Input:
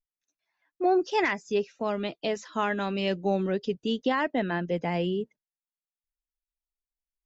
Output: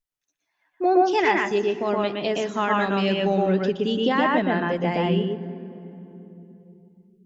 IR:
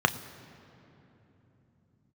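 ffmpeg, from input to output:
-filter_complex "[0:a]asplit=2[a][b];[1:a]atrim=start_sample=2205,adelay=119[c];[b][c]afir=irnorm=-1:irlink=0,volume=-13.5dB[d];[a][d]amix=inputs=2:normalize=0,volume=3dB"

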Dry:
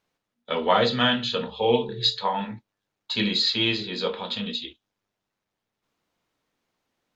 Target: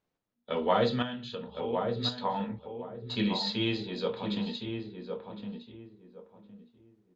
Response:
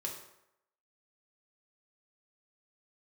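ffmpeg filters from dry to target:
-filter_complex "[0:a]tiltshelf=f=930:g=4.5,asettb=1/sr,asplit=3[a][b][c];[a]atrim=end=1.024[d];[b]atrim=start=1.02:end=1.96,asetpts=PTS-STARTPTS,afade=t=in:d=0.004:c=qsin,afade=t=out:st=0.936:d=0.004:c=qsin,acompressor=threshold=-32dB:ratio=2.5[e];[c]atrim=start=1.956[f];[d][e]acrossfade=d=0.004:c1=hsin:c2=qsin[g];[g][f]acrossfade=d=0.004:c1=qsin:c2=hsin,asplit=2[h][i];[i]adelay=1062,lowpass=f=1.2k:p=1,volume=-5dB,asplit=2[j][k];[k]adelay=1062,lowpass=f=1.2k:p=1,volume=0.26,asplit=2[l][m];[m]adelay=1062,lowpass=f=1.2k:p=1,volume=0.26[n];[h][j][l][n]amix=inputs=4:normalize=0,volume=-6.5dB"

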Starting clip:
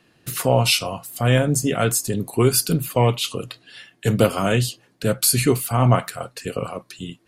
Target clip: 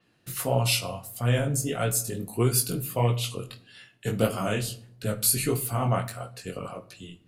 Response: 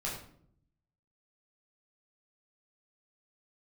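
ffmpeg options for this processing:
-filter_complex "[0:a]flanger=delay=16:depth=6.4:speed=1.6,asplit=2[a][b];[1:a]atrim=start_sample=2205[c];[b][c]afir=irnorm=-1:irlink=0,volume=-14dB[d];[a][d]amix=inputs=2:normalize=0,adynamicequalizer=threshold=0.0141:dfrequency=7800:dqfactor=0.7:tfrequency=7800:tqfactor=0.7:attack=5:release=100:ratio=0.375:range=3:mode=boostabove:tftype=highshelf,volume=-6dB"

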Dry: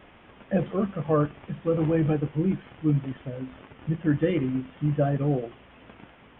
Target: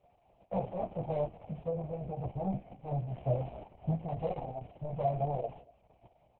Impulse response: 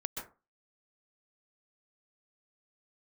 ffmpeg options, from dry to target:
-filter_complex "[0:a]asplit=3[a][b][c];[a]afade=t=out:st=1.35:d=0.02[d];[b]acompressor=threshold=-28dB:ratio=16,afade=t=in:st=1.35:d=0.02,afade=t=out:st=2.17:d=0.02[e];[c]afade=t=in:st=2.17:d=0.02[f];[d][e][f]amix=inputs=3:normalize=0,asettb=1/sr,asplit=3[g][h][i];[g]atrim=end=5.054[j];[h]atrim=start=5.05:end=5.46,asetpts=PTS-STARTPTS,afade=t=in:d=0.004:c=qsin,afade=t=out:st=0.406:d=0.004:c=qsin,highshelf=f=2.4k:g=7.5[k];[i]atrim=start=5.456[l];[j][k]acrossfade=d=0.004:c1=hsin:c2=qsin[m];[m][l]acrossfade=d=0.004:c1=qsin:c2=hsin,agate=range=-13dB:threshold=-45dB:ratio=16:detection=peak,volume=27.5dB,asoftclip=hard,volume=-27.5dB,firequalizer=gain_entry='entry(130,0);entry(190,-2);entry(290,-29);entry(470,-1);entry(690,10);entry(1000,-6);entry(1500,-28);entry(2300,-9);entry(3800,-17);entry(7400,2)':delay=0.05:min_phase=1,aecho=1:1:231:0.075,flanger=delay=15.5:depth=3:speed=0.36,asplit=3[n][o][p];[n]afade=t=out:st=3.12:d=0.02[q];[o]acontrast=58,afade=t=in:st=3.12:d=0.02,afade=t=out:st=3.9:d=0.02[r];[p]afade=t=in:st=3.9:d=0.02[s];[q][r][s]amix=inputs=3:normalize=0,volume=1.5dB" -ar 48000 -c:a libopus -b:a 6k

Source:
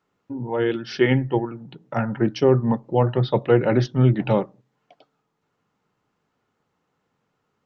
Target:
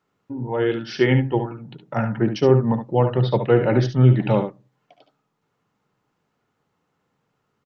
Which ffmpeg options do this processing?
-filter_complex "[0:a]equalizer=f=140:t=o:w=0.37:g=3,asplit=2[a][b];[b]aecho=0:1:61|71:0.158|0.355[c];[a][c]amix=inputs=2:normalize=0"

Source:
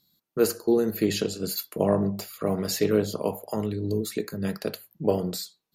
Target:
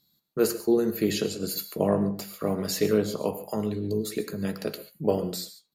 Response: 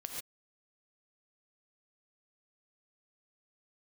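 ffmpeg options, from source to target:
-filter_complex "[0:a]asplit=2[a][b];[b]adelay=14,volume=-13.5dB[c];[a][c]amix=inputs=2:normalize=0,asplit=2[d][e];[1:a]atrim=start_sample=2205[f];[e][f]afir=irnorm=-1:irlink=0,volume=-6dB[g];[d][g]amix=inputs=2:normalize=0,volume=-3.5dB"

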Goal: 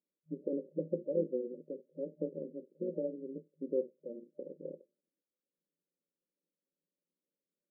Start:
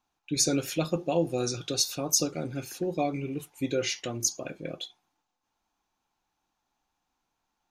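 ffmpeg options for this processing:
-af "equalizer=f=210:t=o:w=2:g=-12,tremolo=f=130:d=0.75,afftfilt=real='re*between(b*sr/4096,160,600)':imag='im*between(b*sr/4096,160,600)':win_size=4096:overlap=0.75,volume=3.5dB"

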